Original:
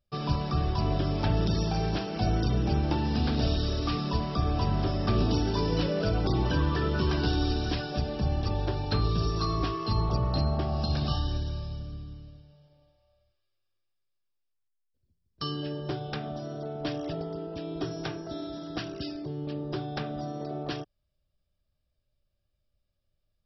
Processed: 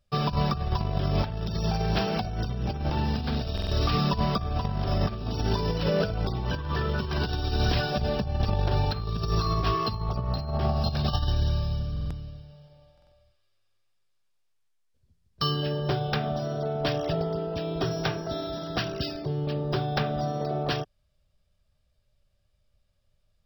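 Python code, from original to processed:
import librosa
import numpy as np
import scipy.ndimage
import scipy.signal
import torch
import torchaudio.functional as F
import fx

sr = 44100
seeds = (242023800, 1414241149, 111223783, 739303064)

y = fx.peak_eq(x, sr, hz=310.0, db=-11.5, octaves=0.34)
y = fx.over_compress(y, sr, threshold_db=-30.0, ratio=-0.5)
y = fx.buffer_glitch(y, sr, at_s=(3.53, 11.92, 12.93), block=2048, repeats=3)
y = np.interp(np.arange(len(y)), np.arange(len(y))[::2], y[::2])
y = y * librosa.db_to_amplitude(5.0)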